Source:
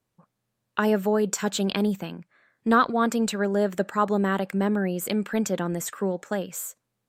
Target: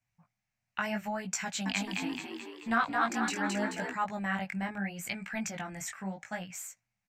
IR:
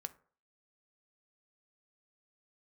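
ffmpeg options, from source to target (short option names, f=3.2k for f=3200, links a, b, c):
-filter_complex "[0:a]firequalizer=gain_entry='entry(110,0);entry(430,-24);entry(720,-1);entry(1100,-8);entry(2200,7);entry(3400,-7);entry(5800,1);entry(9800,-10)':delay=0.05:min_phase=1,asettb=1/sr,asplit=3[a][b][c];[a]atrim=end=1.444[d];[b]atrim=start=1.44:end=3.93,asetpts=PTS-STARTPTS,afade=t=in:d=0.004:c=qsin,afade=t=out:st=2.486:d=0.004:c=qsin,asplit=8[e][f][g][h][i][j][k][l];[f]adelay=216,afreqshift=62,volume=-3dB[m];[g]adelay=432,afreqshift=124,volume=-8.4dB[n];[h]adelay=648,afreqshift=186,volume=-13.7dB[o];[i]adelay=864,afreqshift=248,volume=-19.1dB[p];[j]adelay=1080,afreqshift=310,volume=-24.4dB[q];[k]adelay=1296,afreqshift=372,volume=-29.8dB[r];[l]adelay=1512,afreqshift=434,volume=-35.1dB[s];[e][m][n][o][p][q][r][s]amix=inputs=8:normalize=0,atrim=end_sample=109809[t];[c]atrim=start=3.926[u];[d][t]acrossfade=d=0.004:c1=hsin:c2=qsin[v];[v][u]acrossfade=d=0.004:c1=qsin:c2=hsin,flanger=delay=16.5:depth=5.3:speed=0.76"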